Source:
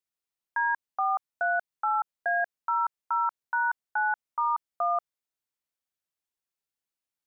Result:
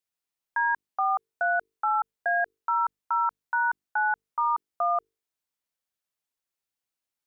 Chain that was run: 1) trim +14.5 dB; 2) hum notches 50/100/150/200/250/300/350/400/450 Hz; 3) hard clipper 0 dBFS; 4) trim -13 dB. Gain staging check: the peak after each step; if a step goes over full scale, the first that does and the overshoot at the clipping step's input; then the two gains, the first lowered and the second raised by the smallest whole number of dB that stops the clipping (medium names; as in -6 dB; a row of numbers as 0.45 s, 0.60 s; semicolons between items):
-5.0 dBFS, -5.0 dBFS, -5.0 dBFS, -18.0 dBFS; nothing clips